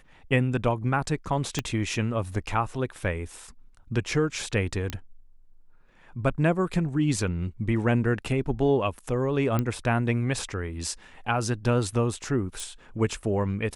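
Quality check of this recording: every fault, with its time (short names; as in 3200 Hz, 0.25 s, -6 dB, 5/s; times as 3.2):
1.59 pop -11 dBFS
4.9 pop -15 dBFS
9.59 pop -13 dBFS
12.6 pop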